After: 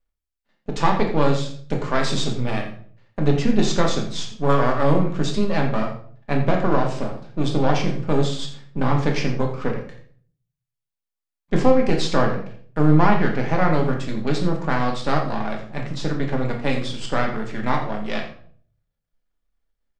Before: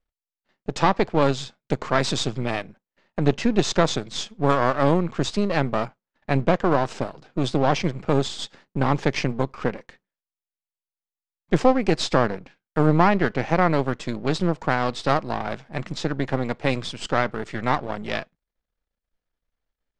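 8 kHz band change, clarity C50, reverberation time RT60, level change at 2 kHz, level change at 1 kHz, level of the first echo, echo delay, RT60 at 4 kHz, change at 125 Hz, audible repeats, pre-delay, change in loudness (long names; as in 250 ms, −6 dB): −0.5 dB, 6.5 dB, 0.55 s, −0.5 dB, 0.0 dB, −12.0 dB, 85 ms, 0.40 s, +2.5 dB, 1, 3 ms, +1.0 dB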